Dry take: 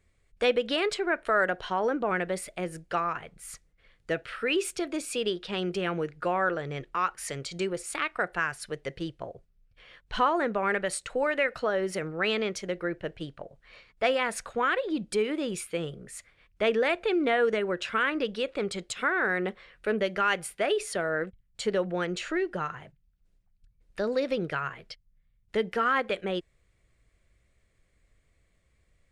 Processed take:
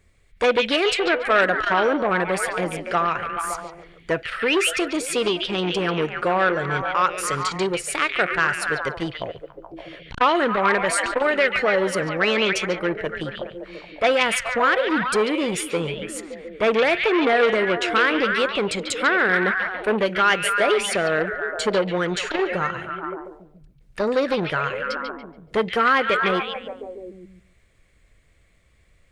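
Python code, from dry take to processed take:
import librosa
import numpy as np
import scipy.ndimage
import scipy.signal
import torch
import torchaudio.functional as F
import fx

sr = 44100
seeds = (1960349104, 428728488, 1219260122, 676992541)

p1 = x + fx.echo_stepped(x, sr, ms=142, hz=2900.0, octaves=-0.7, feedback_pct=70, wet_db=-1, dry=0)
p2 = fx.transformer_sat(p1, sr, knee_hz=1600.0)
y = p2 * 10.0 ** (8.5 / 20.0)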